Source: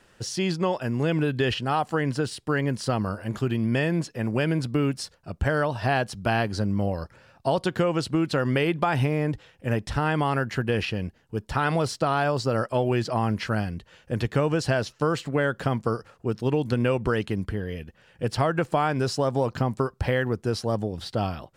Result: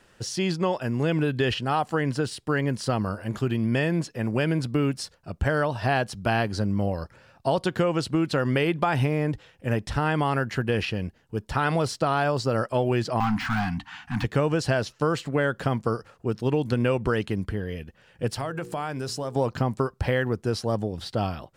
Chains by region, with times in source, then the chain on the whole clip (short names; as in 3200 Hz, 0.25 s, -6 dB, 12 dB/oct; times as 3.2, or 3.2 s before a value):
13.2–14.24 overdrive pedal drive 26 dB, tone 1200 Hz, clips at -15 dBFS + de-esser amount 85% + Chebyshev band-stop 290–720 Hz, order 5
18.31–19.36 high shelf 6600 Hz +8.5 dB + notches 60/120/180/240/300/360/420/480 Hz + compressor 2:1, threshold -32 dBFS
whole clip: dry